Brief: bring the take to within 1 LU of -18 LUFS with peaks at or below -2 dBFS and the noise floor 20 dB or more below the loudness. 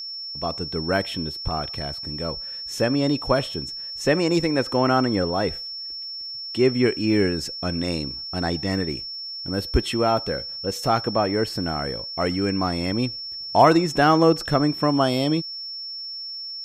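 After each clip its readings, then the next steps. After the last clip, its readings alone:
ticks 53/s; steady tone 5400 Hz; tone level -31 dBFS; loudness -23.5 LUFS; peak -3.0 dBFS; loudness target -18.0 LUFS
-> de-click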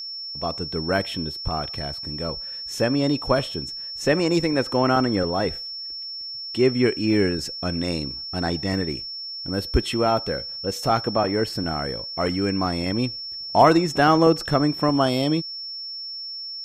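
ticks 0.12/s; steady tone 5400 Hz; tone level -31 dBFS
-> notch 5400 Hz, Q 30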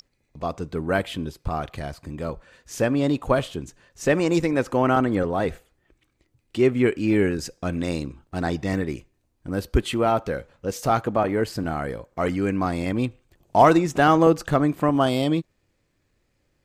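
steady tone none; loudness -23.5 LUFS; peak -3.5 dBFS; loudness target -18.0 LUFS
-> gain +5.5 dB; limiter -2 dBFS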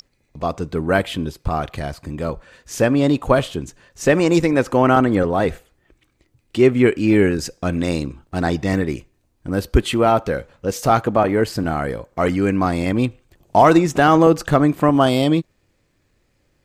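loudness -18.5 LUFS; peak -2.0 dBFS; noise floor -65 dBFS

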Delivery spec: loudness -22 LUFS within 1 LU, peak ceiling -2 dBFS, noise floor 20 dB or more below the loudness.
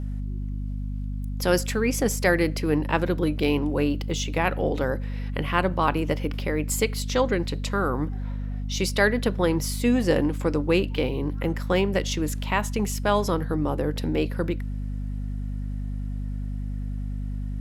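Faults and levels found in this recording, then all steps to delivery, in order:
hum 50 Hz; harmonics up to 250 Hz; hum level -27 dBFS; loudness -26.0 LUFS; peak -6.5 dBFS; loudness target -22.0 LUFS
-> notches 50/100/150/200/250 Hz; gain +4 dB

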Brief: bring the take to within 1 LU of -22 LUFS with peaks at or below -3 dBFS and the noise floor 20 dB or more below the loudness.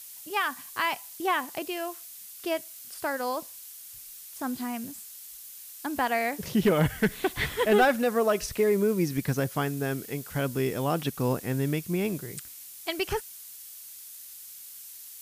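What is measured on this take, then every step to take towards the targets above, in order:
noise floor -45 dBFS; noise floor target -49 dBFS; loudness -28.5 LUFS; peak -10.5 dBFS; loudness target -22.0 LUFS
-> noise print and reduce 6 dB; gain +6.5 dB

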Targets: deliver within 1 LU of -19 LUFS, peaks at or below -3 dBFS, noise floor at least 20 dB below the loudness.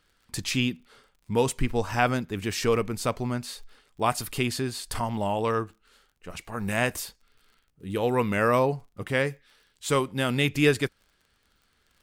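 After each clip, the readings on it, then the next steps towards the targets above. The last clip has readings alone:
ticks 43/s; loudness -27.0 LUFS; peak -8.0 dBFS; loudness target -19.0 LUFS
-> de-click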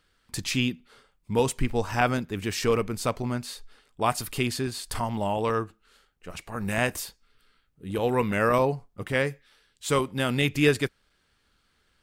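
ticks 0/s; loudness -27.0 LUFS; peak -8.0 dBFS; loudness target -19.0 LUFS
-> gain +8 dB; limiter -3 dBFS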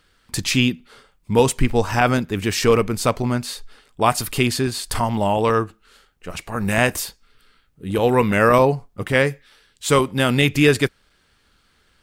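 loudness -19.5 LUFS; peak -3.0 dBFS; noise floor -62 dBFS

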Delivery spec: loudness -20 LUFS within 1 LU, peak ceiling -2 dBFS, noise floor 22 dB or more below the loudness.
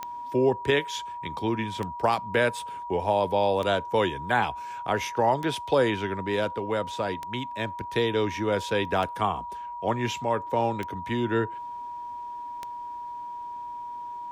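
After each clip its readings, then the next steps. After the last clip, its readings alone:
clicks 8; steady tone 960 Hz; tone level -34 dBFS; loudness -28.0 LUFS; peak -11.0 dBFS; loudness target -20.0 LUFS
-> de-click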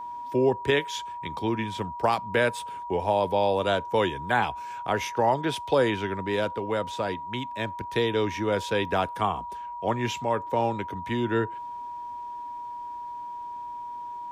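clicks 0; steady tone 960 Hz; tone level -34 dBFS
-> notch 960 Hz, Q 30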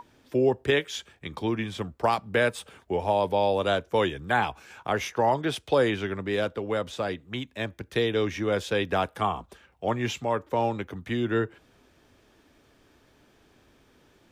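steady tone none; loudness -27.5 LUFS; peak -11.5 dBFS; loudness target -20.0 LUFS
-> gain +7.5 dB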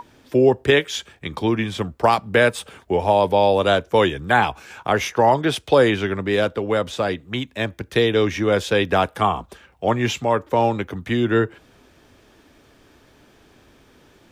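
loudness -20.0 LUFS; peak -4.0 dBFS; noise floor -54 dBFS

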